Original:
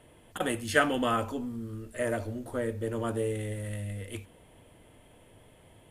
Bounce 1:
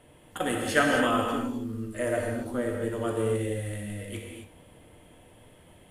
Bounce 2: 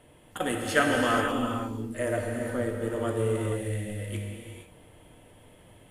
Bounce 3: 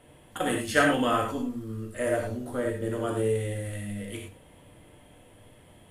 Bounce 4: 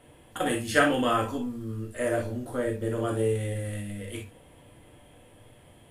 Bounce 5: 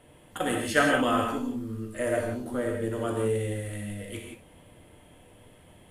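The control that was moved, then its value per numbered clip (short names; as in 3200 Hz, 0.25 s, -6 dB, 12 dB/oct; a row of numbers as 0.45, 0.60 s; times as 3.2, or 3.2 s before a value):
non-linear reverb, gate: 290, 500, 130, 80, 200 ms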